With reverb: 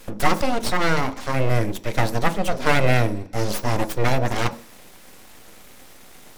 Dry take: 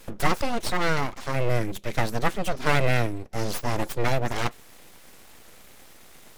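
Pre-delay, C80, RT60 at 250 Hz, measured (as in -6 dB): 3 ms, 20.5 dB, 0.50 s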